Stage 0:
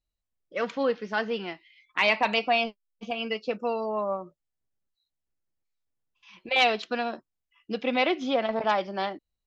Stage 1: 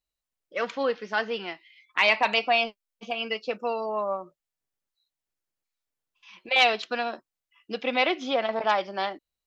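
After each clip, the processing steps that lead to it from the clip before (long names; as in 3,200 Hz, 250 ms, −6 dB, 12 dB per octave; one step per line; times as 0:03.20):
low-shelf EQ 300 Hz −11 dB
level +2.5 dB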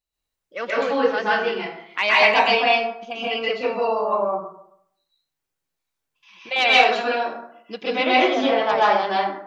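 dense smooth reverb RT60 0.7 s, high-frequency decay 0.5×, pre-delay 115 ms, DRR −7.5 dB
level −1 dB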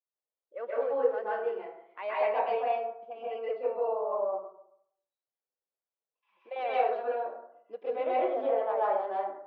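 four-pole ladder band-pass 600 Hz, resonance 45%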